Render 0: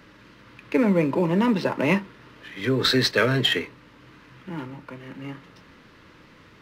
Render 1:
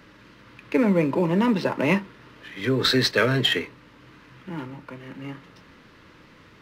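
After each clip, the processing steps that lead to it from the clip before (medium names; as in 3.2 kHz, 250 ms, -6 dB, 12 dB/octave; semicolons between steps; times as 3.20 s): no audible change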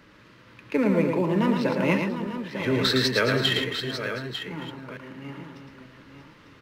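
chunks repeated in reverse 453 ms, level -9.5 dB; multi-tap echo 111/898 ms -5/-9.5 dB; trim -3 dB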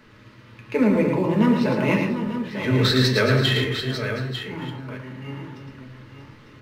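on a send at -2 dB: peaking EQ 110 Hz +8 dB 0.91 oct + reverberation RT60 0.40 s, pre-delay 5 ms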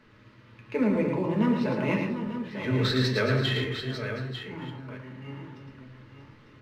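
treble shelf 7.3 kHz -9.5 dB; trim -6 dB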